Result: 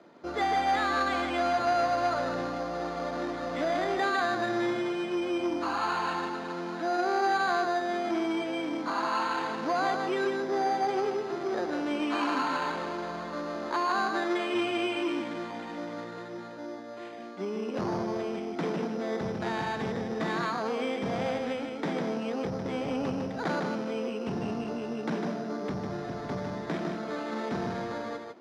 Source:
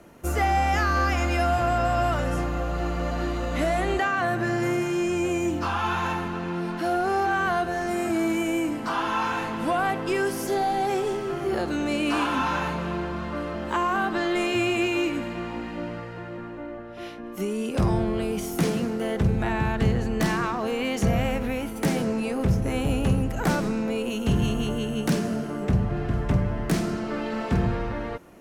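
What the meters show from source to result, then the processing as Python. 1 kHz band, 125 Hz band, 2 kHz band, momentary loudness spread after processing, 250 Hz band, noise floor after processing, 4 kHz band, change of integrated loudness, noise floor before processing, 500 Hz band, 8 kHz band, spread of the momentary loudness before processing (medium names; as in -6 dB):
-2.5 dB, -14.5 dB, -4.5 dB, 9 LU, -6.0 dB, -40 dBFS, -3.5 dB, -5.0 dB, -36 dBFS, -3.5 dB, -10.0 dB, 7 LU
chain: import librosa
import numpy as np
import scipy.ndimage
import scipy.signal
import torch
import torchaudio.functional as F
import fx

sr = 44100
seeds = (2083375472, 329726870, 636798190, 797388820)

y = x + 10.0 ** (-5.0 / 20.0) * np.pad(x, (int(153 * sr / 1000.0), 0))[:len(x)]
y = np.repeat(scipy.signal.resample_poly(y, 1, 8), 8)[:len(y)]
y = fx.bandpass_edges(y, sr, low_hz=250.0, high_hz=3500.0)
y = fx.transformer_sat(y, sr, knee_hz=670.0)
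y = y * librosa.db_to_amplitude(-3.0)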